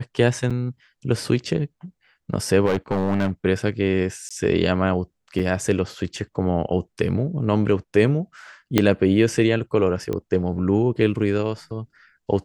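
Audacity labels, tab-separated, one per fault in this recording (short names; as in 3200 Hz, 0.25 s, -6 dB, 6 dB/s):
0.500000	0.510000	gap 6 ms
2.650000	3.310000	clipped -16.5 dBFS
4.290000	4.310000	gap 16 ms
5.390000	5.400000	gap 6.6 ms
8.780000	8.780000	pop -2 dBFS
10.130000	10.130000	pop -15 dBFS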